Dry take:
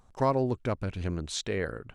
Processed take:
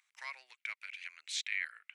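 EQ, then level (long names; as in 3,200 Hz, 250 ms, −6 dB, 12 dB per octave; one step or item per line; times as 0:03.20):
four-pole ladder high-pass 2,000 Hz, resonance 70%
+6.5 dB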